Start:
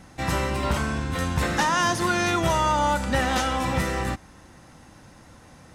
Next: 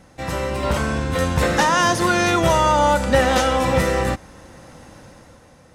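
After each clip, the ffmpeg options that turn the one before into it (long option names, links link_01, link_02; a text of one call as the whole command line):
ffmpeg -i in.wav -af "equalizer=frequency=520:width=3.3:gain=7.5,dynaudnorm=framelen=120:gausssize=11:maxgain=8dB,volume=-2dB" out.wav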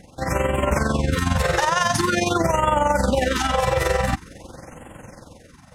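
ffmpeg -i in.wav -af "alimiter=limit=-14.5dB:level=0:latency=1:release=23,tremolo=f=22:d=0.621,afftfilt=real='re*(1-between(b*sr/1024,230*pow(4900/230,0.5+0.5*sin(2*PI*0.46*pts/sr))/1.41,230*pow(4900/230,0.5+0.5*sin(2*PI*0.46*pts/sr))*1.41))':imag='im*(1-between(b*sr/1024,230*pow(4900/230,0.5+0.5*sin(2*PI*0.46*pts/sr))/1.41,230*pow(4900/230,0.5+0.5*sin(2*PI*0.46*pts/sr))*1.41))':win_size=1024:overlap=0.75,volume=5.5dB" out.wav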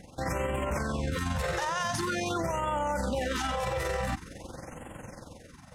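ffmpeg -i in.wav -af "alimiter=limit=-19.5dB:level=0:latency=1:release=36,volume=-3dB" out.wav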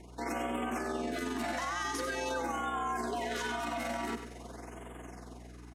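ffmpeg -i in.wav -af "afreqshift=170,aeval=exprs='val(0)+0.00447*(sin(2*PI*60*n/s)+sin(2*PI*2*60*n/s)/2+sin(2*PI*3*60*n/s)/3+sin(2*PI*4*60*n/s)/4+sin(2*PI*5*60*n/s)/5)':channel_layout=same,aecho=1:1:100|200|300:0.335|0.0804|0.0193,volume=-5dB" out.wav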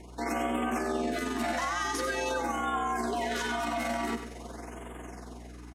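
ffmpeg -i in.wav -filter_complex "[0:a]asplit=2[link_01][link_02];[link_02]adelay=13,volume=-11.5dB[link_03];[link_01][link_03]amix=inputs=2:normalize=0,volume=3.5dB" out.wav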